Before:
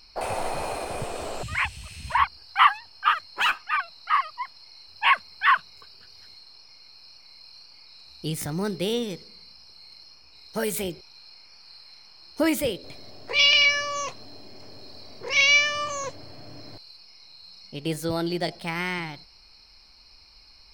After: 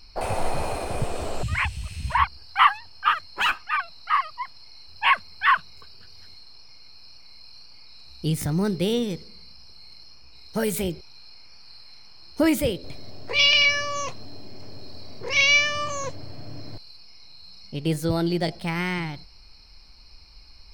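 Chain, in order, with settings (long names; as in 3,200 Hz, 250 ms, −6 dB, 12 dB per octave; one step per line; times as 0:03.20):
low-shelf EQ 210 Hz +10.5 dB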